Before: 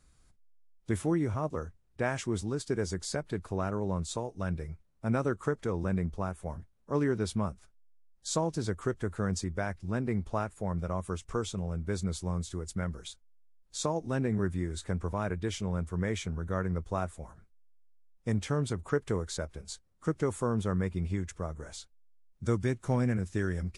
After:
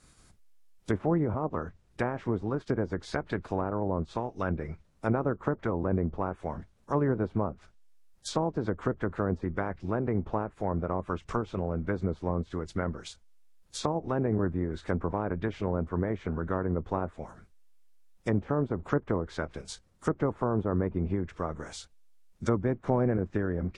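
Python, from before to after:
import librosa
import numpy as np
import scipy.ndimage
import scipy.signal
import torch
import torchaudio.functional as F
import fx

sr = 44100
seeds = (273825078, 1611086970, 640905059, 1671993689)

y = fx.spec_clip(x, sr, under_db=13)
y = fx.env_lowpass_down(y, sr, base_hz=840.0, full_db=-27.5)
y = y * librosa.db_to_amplitude(3.0)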